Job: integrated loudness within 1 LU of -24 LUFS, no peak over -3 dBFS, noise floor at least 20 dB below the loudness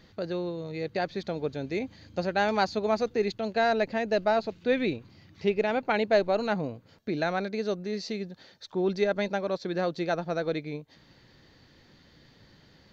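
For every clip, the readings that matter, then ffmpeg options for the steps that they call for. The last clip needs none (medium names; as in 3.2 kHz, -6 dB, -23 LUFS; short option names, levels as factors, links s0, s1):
loudness -29.0 LUFS; peak level -11.5 dBFS; loudness target -24.0 LUFS
-> -af "volume=1.78"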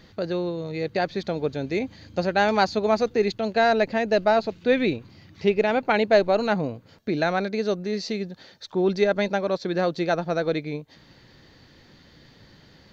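loudness -24.0 LUFS; peak level -6.5 dBFS; noise floor -54 dBFS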